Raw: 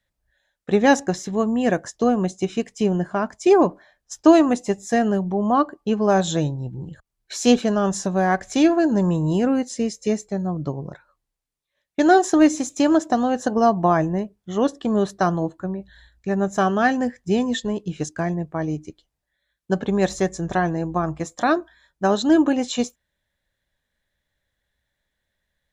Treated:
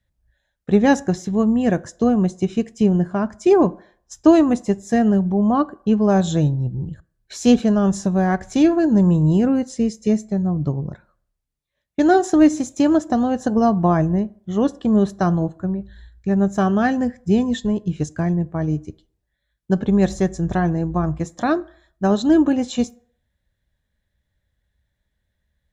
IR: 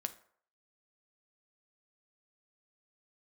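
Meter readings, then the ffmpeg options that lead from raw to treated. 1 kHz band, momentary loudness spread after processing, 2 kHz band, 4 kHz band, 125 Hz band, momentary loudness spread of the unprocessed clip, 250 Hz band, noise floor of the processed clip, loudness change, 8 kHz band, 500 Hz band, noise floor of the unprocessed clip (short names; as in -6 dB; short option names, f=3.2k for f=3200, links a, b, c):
-2.0 dB, 9 LU, -3.0 dB, -3.5 dB, +6.0 dB, 11 LU, +3.5 dB, -76 dBFS, +2.0 dB, -3.5 dB, 0.0 dB, -80 dBFS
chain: -filter_complex "[0:a]equalizer=f=67:w=0.3:g=14,asplit=2[a][b];[1:a]atrim=start_sample=2205[c];[b][c]afir=irnorm=-1:irlink=0,volume=-4.5dB[d];[a][d]amix=inputs=2:normalize=0,volume=-7dB"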